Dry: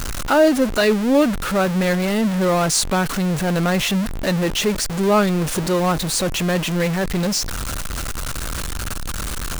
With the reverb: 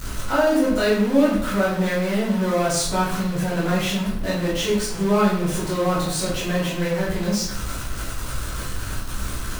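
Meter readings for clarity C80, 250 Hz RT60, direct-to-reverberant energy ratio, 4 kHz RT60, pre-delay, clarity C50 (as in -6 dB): 6.5 dB, 0.85 s, -8.5 dB, 0.50 s, 8 ms, 3.0 dB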